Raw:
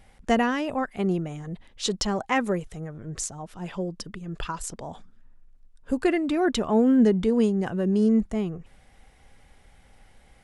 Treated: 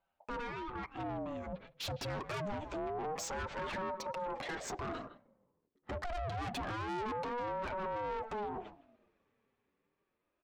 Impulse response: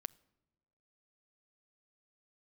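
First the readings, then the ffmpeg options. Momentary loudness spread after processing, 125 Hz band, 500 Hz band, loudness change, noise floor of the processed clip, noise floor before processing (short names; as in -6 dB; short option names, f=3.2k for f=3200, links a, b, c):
6 LU, -12.0 dB, -13.0 dB, -14.5 dB, -84 dBFS, -57 dBFS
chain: -filter_complex "[0:a]agate=range=-25dB:threshold=-44dB:ratio=16:detection=peak,aresample=16000,volume=24.5dB,asoftclip=hard,volume=-24.5dB,aresample=44100,lowpass=f=3.2k:p=1,acompressor=threshold=-38dB:ratio=6,highpass=f=48:w=0.5412,highpass=f=48:w=1.3066,flanger=delay=5:depth=4.7:regen=-6:speed=1:shape=sinusoidal,dynaudnorm=f=320:g=13:m=14.5dB,asplit=2[a][b];[b]adelay=160,highpass=300,lowpass=3.4k,asoftclip=type=hard:threshold=-26.5dB,volume=-19dB[c];[a][c]amix=inputs=2:normalize=0,asplit=2[d][e];[1:a]atrim=start_sample=2205,lowpass=4.2k[f];[e][f]afir=irnorm=-1:irlink=0,volume=2dB[g];[d][g]amix=inputs=2:normalize=0,alimiter=limit=-21dB:level=0:latency=1:release=231,asoftclip=type=tanh:threshold=-34.5dB,aeval=exprs='val(0)*sin(2*PI*540*n/s+540*0.4/0.26*sin(2*PI*0.26*n/s))':c=same,volume=1dB"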